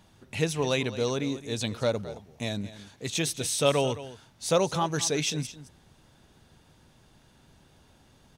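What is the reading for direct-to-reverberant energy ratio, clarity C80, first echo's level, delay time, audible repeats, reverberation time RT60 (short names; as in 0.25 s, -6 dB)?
none, none, -15.0 dB, 0.216 s, 1, none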